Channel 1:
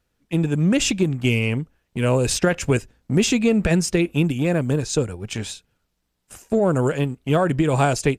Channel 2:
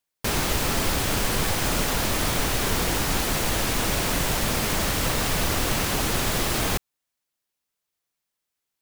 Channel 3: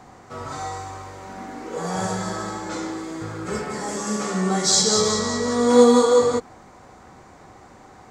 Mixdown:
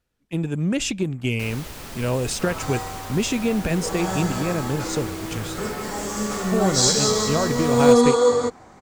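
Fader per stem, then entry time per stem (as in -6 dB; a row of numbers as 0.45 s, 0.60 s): -4.5 dB, -13.0 dB, -1.0 dB; 0.00 s, 1.15 s, 2.10 s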